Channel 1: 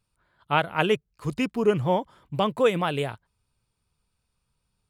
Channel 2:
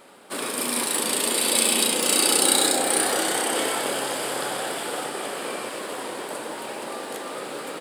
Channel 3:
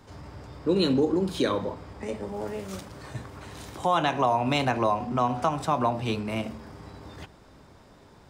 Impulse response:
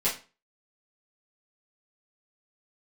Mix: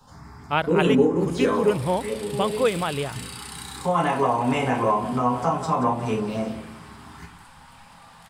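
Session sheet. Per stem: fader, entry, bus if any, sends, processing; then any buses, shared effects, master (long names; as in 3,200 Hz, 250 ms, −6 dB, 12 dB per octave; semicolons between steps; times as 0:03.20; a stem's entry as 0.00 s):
−0.5 dB, 0.00 s, no bus, no send, no echo send, no processing
−13.5 dB, 1.10 s, bus A, no send, no echo send, high-shelf EQ 7,100 Hz −8 dB
−1.5 dB, 0.00 s, bus A, send −5.5 dB, echo send −9 dB, phaser swept by the level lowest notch 340 Hz, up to 4,200 Hz, full sweep at −24 dBFS
bus A: 0.0 dB, linear-phase brick-wall high-pass 750 Hz; downward compressor, threshold −34 dBFS, peak gain reduction 10.5 dB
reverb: on, RT60 0.35 s, pre-delay 5 ms
echo: repeating echo 184 ms, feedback 43%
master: no processing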